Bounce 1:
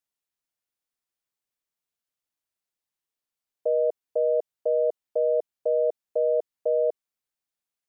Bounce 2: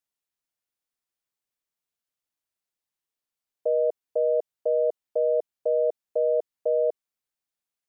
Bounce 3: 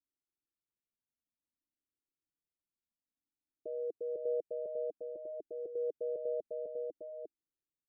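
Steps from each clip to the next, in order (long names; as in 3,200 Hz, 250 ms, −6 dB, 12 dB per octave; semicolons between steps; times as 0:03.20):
no processing that can be heard
low-pass with resonance 300 Hz, resonance Q 3.5; single-tap delay 351 ms −3 dB; flanger whose copies keep moving one way rising 0.56 Hz; level −2 dB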